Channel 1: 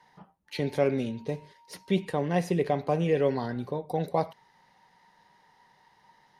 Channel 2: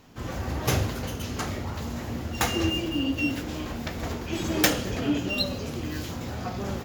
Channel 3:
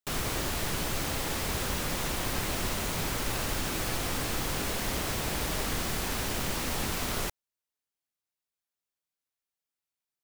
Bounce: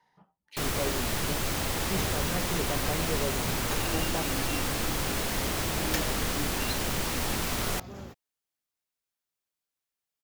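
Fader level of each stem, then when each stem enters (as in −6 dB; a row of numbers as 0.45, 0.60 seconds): −9.0, −11.0, +1.5 decibels; 0.00, 1.30, 0.50 seconds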